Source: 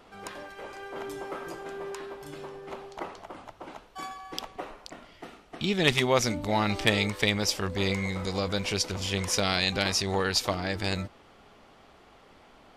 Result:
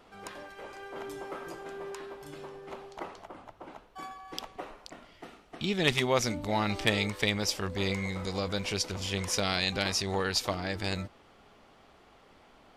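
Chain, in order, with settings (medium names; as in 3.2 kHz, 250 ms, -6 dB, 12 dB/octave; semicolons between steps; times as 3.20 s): 3.27–4.28 s: peaking EQ 6.8 kHz -5.5 dB 2.7 oct; trim -3 dB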